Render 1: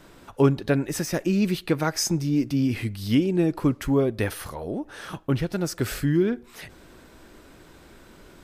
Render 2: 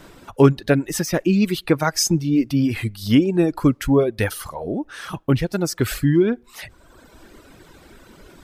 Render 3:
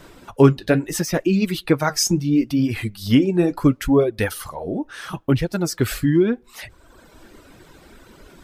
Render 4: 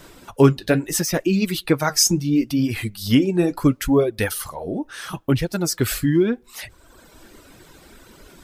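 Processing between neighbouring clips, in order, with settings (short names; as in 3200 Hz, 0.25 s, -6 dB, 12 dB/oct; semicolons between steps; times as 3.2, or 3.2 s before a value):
reverb removal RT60 1.2 s; gain +6 dB
flange 0.74 Hz, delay 1.6 ms, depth 9.5 ms, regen -60%; gain +4 dB
high shelf 4100 Hz +7 dB; gain -1 dB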